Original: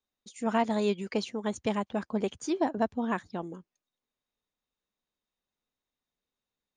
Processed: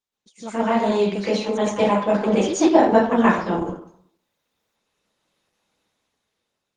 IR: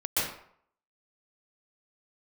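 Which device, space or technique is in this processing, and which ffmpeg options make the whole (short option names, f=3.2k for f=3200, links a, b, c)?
far-field microphone of a smart speaker: -filter_complex "[0:a]asplit=3[a][b][c];[a]afade=t=out:st=1.5:d=0.02[d];[b]lowshelf=f=120:g=-5,afade=t=in:st=1.5:d=0.02,afade=t=out:st=2.97:d=0.02[e];[c]afade=t=in:st=2.97:d=0.02[f];[d][e][f]amix=inputs=3:normalize=0[g];[1:a]atrim=start_sample=2205[h];[g][h]afir=irnorm=-1:irlink=0,highpass=f=130:p=1,dynaudnorm=f=450:g=7:m=16dB,volume=-1.5dB" -ar 48000 -c:a libopus -b:a 16k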